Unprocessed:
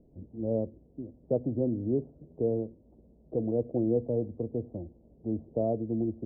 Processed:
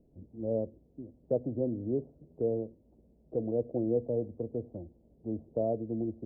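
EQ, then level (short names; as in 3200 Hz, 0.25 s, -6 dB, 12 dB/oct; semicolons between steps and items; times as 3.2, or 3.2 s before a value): dynamic EQ 550 Hz, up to +4 dB, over -41 dBFS, Q 1.4; -4.5 dB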